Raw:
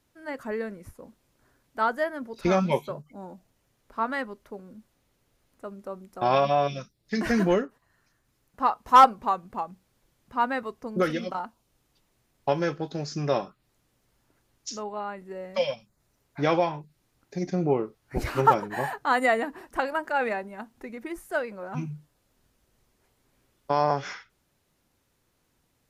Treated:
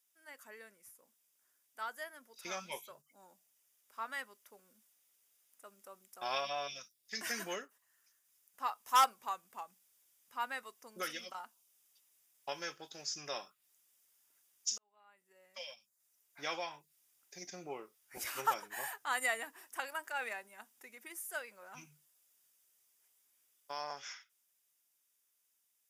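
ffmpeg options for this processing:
ffmpeg -i in.wav -filter_complex "[0:a]asplit=2[link_01][link_02];[link_01]atrim=end=14.78,asetpts=PTS-STARTPTS,afade=type=out:start_time=14.776:duration=0.004:curve=hsin[link_03];[link_02]atrim=start=14.78,asetpts=PTS-STARTPTS,afade=type=in:duration=1.96[link_04];[link_03][link_04]concat=n=2:v=0:a=1,aderivative,bandreject=frequency=4200:width=6.1,dynaudnorm=framelen=490:gausssize=13:maxgain=5dB,volume=-1.5dB" out.wav

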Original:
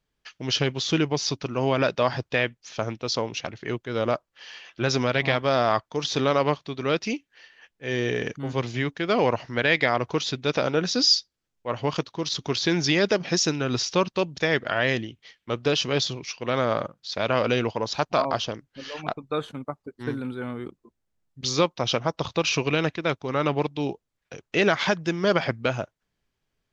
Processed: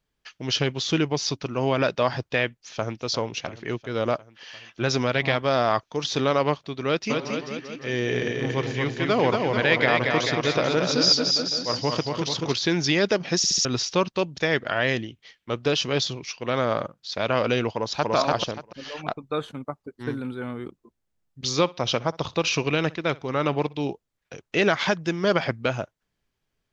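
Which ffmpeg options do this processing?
ffmpeg -i in.wav -filter_complex "[0:a]asplit=2[link_01][link_02];[link_02]afade=type=in:start_time=2.45:duration=0.01,afade=type=out:start_time=3.03:duration=0.01,aecho=0:1:350|700|1050|1400|1750|2100|2450|2800|3150|3500|3850:0.177828|0.133371|0.100028|0.0750212|0.0562659|0.0421994|0.0316496|0.0237372|0.0178029|0.0133522|0.0100141[link_03];[link_01][link_03]amix=inputs=2:normalize=0,asplit=3[link_04][link_05][link_06];[link_04]afade=type=out:start_time=7.09:duration=0.02[link_07];[link_05]aecho=1:1:230|437|623.3|791|941.9:0.631|0.398|0.251|0.158|0.1,afade=type=in:start_time=7.09:duration=0.02,afade=type=out:start_time=12.52:duration=0.02[link_08];[link_06]afade=type=in:start_time=12.52:duration=0.02[link_09];[link_07][link_08][link_09]amix=inputs=3:normalize=0,asplit=2[link_10][link_11];[link_11]afade=type=in:start_time=17.74:duration=0.01,afade=type=out:start_time=18.14:duration=0.01,aecho=0:1:290|580|870:1|0.2|0.04[link_12];[link_10][link_12]amix=inputs=2:normalize=0,asplit=3[link_13][link_14][link_15];[link_13]afade=type=out:start_time=21.65:duration=0.02[link_16];[link_14]aecho=1:1:62|124:0.075|0.0165,afade=type=in:start_time=21.65:duration=0.02,afade=type=out:start_time=23.89:duration=0.02[link_17];[link_15]afade=type=in:start_time=23.89:duration=0.02[link_18];[link_16][link_17][link_18]amix=inputs=3:normalize=0,asplit=5[link_19][link_20][link_21][link_22][link_23];[link_19]atrim=end=13.442[link_24];[link_20]atrim=start=13.368:end=13.442[link_25];[link_21]atrim=start=13.368:end=13.442[link_26];[link_22]atrim=start=13.368:end=13.442[link_27];[link_23]atrim=start=13.648[link_28];[link_24][link_25]acrossfade=duration=0.004:curve1=hsin:curve2=hsin[link_29];[link_29][link_26]acrossfade=duration=0.004:curve1=hsin:curve2=hsin[link_30];[link_30][link_27]acrossfade=duration=0.004:curve1=hsin:curve2=hsin[link_31];[link_31][link_28]acrossfade=duration=0.004:curve1=hsin:curve2=hsin" out.wav

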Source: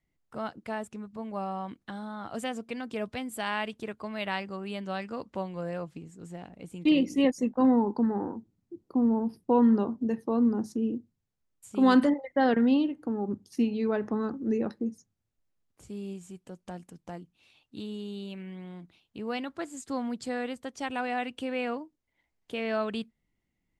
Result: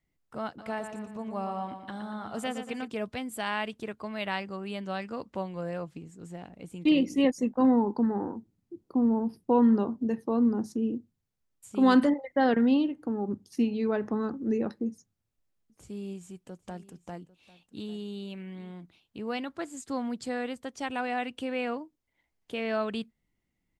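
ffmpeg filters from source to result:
ffmpeg -i in.wav -filter_complex "[0:a]asplit=3[link_01][link_02][link_03];[link_01]afade=type=out:start_time=0.58:duration=0.02[link_04];[link_02]aecho=1:1:117|234|351|468|585|702:0.398|0.191|0.0917|0.044|0.0211|0.0101,afade=type=in:start_time=0.58:duration=0.02,afade=type=out:start_time=2.86:duration=0.02[link_05];[link_03]afade=type=in:start_time=2.86:duration=0.02[link_06];[link_04][link_05][link_06]amix=inputs=3:normalize=0,asettb=1/sr,asplit=3[link_07][link_08][link_09];[link_07]atrim=end=14.904[link_10];[link_08]atrim=start=14.9:end=18.71,asetpts=PTS-STARTPTS,afade=type=in:duration=0.004:curve=qsin,afade=type=out:start_time=3.806:duration=0.004:curve=qsin,aecho=1:1:797:0.112,atrim=end_sample=168021[link_11];[link_09]atrim=start=18.706[link_12];[link_10][link_11]acrossfade=duration=0.004:curve1=hsin:curve2=qsin[link_13];[link_13][link_12]acrossfade=duration=0.004:curve1=qsin:curve2=hsin" out.wav

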